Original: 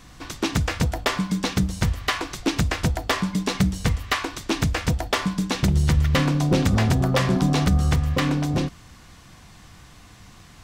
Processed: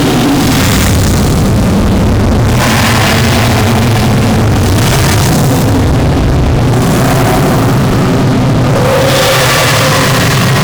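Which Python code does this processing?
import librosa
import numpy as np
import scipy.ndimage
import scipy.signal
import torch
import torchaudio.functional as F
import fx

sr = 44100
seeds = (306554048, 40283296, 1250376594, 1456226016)

y = fx.paulstretch(x, sr, seeds[0], factor=17.0, window_s=0.05, from_s=6.62)
y = fx.fuzz(y, sr, gain_db=38.0, gate_db=-36.0)
y = F.gain(torch.from_numpy(y), 6.5).numpy()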